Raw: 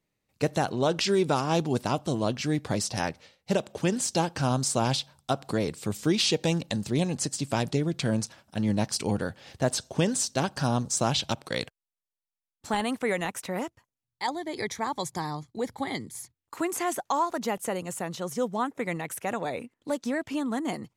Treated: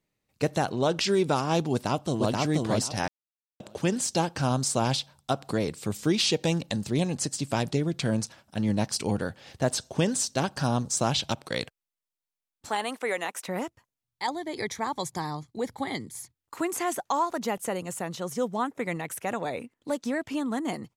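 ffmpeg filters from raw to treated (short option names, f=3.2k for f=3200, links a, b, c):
-filter_complex "[0:a]asplit=2[a][b];[b]afade=t=in:st=1.72:d=0.01,afade=t=out:st=2.33:d=0.01,aecho=0:1:480|960|1440:0.841395|0.168279|0.0336558[c];[a][c]amix=inputs=2:normalize=0,asettb=1/sr,asplit=3[d][e][f];[d]atrim=end=12.694[g];[e]atrim=start=12.69:end=13.48,asetpts=PTS-STARTPTS,afade=t=in:d=0.004:c=qsin,afade=t=out:st=0.786:d=0.004:c=qsin,highpass=390[h];[f]atrim=start=13.476[i];[g][h]acrossfade=d=0.004:c1=hsin:c2=qsin[j];[j][i]acrossfade=d=0.004:c1=qsin:c2=hsin,asplit=3[k][l][m];[k]atrim=end=3.08,asetpts=PTS-STARTPTS,afade=t=out:st=3.076:d=0.004:c=hsin[n];[l]atrim=start=3.08:end=3.6,asetpts=PTS-STARTPTS,volume=0[o];[m]atrim=start=3.6,asetpts=PTS-STARTPTS,afade=t=in:d=0.004:c=hsin[p];[n][o][p]concat=n=3:v=0:a=1"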